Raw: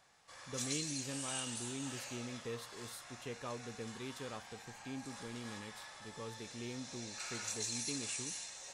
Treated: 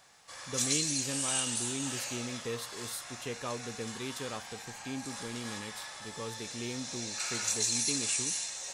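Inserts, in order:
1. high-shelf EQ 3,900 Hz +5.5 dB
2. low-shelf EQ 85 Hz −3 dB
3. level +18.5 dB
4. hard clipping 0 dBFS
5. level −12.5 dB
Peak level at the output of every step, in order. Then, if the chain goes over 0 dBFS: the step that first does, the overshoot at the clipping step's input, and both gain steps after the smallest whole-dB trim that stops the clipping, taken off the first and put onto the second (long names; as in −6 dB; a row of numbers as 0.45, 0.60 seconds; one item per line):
−23.0, −23.0, −4.5, −4.5, −17.0 dBFS
no step passes full scale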